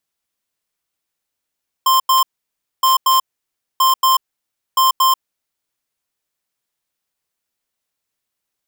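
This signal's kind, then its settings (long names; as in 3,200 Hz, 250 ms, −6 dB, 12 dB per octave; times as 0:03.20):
beeps in groups square 1,050 Hz, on 0.14 s, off 0.09 s, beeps 2, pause 0.60 s, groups 4, −12.5 dBFS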